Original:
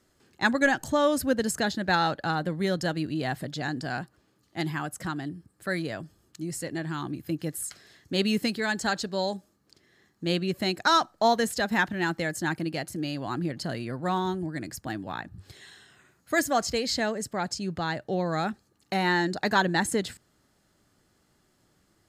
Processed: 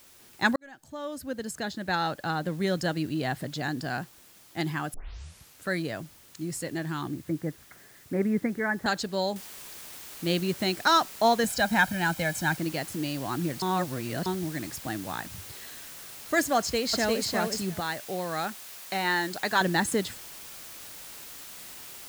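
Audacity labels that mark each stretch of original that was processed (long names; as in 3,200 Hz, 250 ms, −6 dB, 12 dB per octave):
0.560000	2.770000	fade in
4.940000	4.940000	tape start 0.74 s
7.080000	8.860000	Butterworth low-pass 2,200 Hz 96 dB per octave
9.360000	9.360000	noise floor change −55 dB −44 dB
11.440000	12.570000	comb filter 1.3 ms
13.620000	14.260000	reverse
16.580000	17.270000	delay throw 350 ms, feedback 10%, level −3 dB
17.800000	19.610000	low-shelf EQ 400 Hz −10 dB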